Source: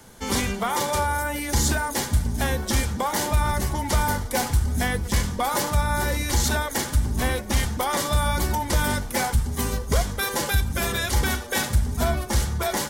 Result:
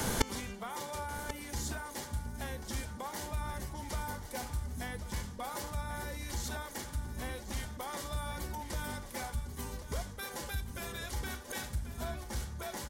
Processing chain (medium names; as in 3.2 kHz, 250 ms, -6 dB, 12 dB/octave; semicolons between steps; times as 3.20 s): inverted gate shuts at -26 dBFS, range -31 dB; delay 1088 ms -12 dB; trim +15 dB